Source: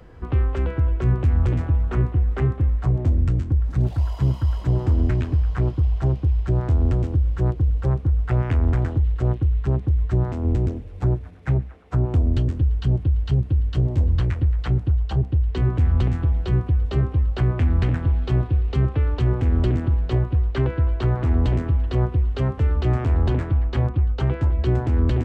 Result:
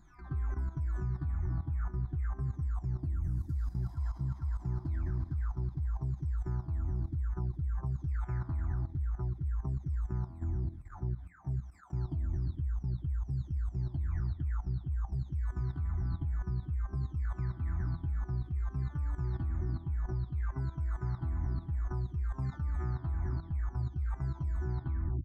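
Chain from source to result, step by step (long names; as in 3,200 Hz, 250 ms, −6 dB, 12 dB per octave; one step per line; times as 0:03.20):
every frequency bin delayed by itself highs early, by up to 651 ms
output level in coarse steps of 13 dB
phaser with its sweep stopped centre 1,200 Hz, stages 4
level −5.5 dB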